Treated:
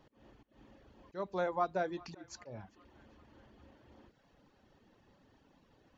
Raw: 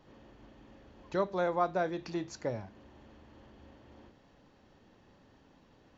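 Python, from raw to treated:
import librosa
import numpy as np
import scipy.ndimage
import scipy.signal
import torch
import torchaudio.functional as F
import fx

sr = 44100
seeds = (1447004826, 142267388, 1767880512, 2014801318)

y = fx.auto_swell(x, sr, attack_ms=183.0)
y = fx.dereverb_blind(y, sr, rt60_s=0.75)
y = fx.echo_banded(y, sr, ms=396, feedback_pct=68, hz=1900.0, wet_db=-20.5)
y = y * librosa.db_to_amplitude(-2.5)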